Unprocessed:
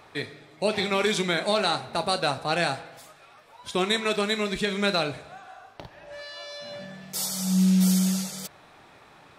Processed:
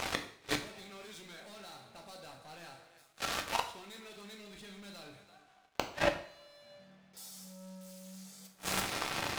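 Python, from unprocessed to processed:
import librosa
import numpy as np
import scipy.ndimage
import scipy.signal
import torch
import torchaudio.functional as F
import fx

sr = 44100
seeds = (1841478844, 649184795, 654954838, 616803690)

y = fx.air_absorb(x, sr, metres=230.0, at=(5.99, 7.17))
y = fx.echo_feedback(y, sr, ms=336, feedback_pct=16, wet_db=-23.0)
y = fx.leveller(y, sr, passes=5)
y = fx.high_shelf(y, sr, hz=2500.0, db=3.0)
y = fx.gate_flip(y, sr, shuts_db=-19.0, range_db=-41)
y = fx.rev_double_slope(y, sr, seeds[0], early_s=0.5, late_s=2.4, knee_db=-27, drr_db=4.5)
y = y * librosa.db_to_amplitude(3.5)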